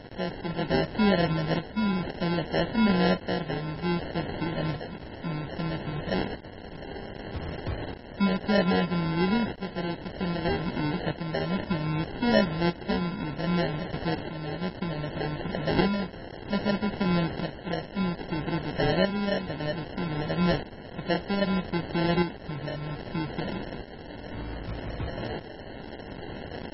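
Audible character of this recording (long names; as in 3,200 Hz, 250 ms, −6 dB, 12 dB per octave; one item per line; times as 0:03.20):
a quantiser's noise floor 6 bits, dither triangular
tremolo saw up 0.63 Hz, depth 60%
aliases and images of a low sample rate 1,200 Hz, jitter 0%
MP3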